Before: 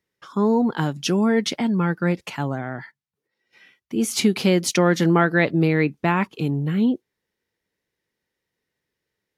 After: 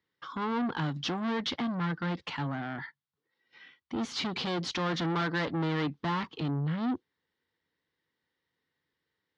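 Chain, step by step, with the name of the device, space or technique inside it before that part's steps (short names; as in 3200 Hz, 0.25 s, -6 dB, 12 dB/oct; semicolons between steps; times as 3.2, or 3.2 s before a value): guitar amplifier (tube stage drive 26 dB, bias 0.25; tone controls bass +5 dB, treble +11 dB; speaker cabinet 110–3600 Hz, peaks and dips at 120 Hz -9 dB, 200 Hz -10 dB, 390 Hz -6 dB, 610 Hz -7 dB, 1100 Hz +3 dB, 2500 Hz -7 dB)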